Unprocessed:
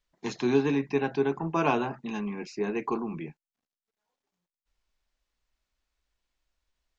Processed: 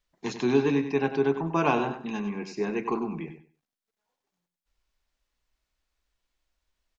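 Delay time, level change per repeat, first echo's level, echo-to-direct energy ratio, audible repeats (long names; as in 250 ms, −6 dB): 97 ms, −13.5 dB, −10.0 dB, −10.0 dB, 2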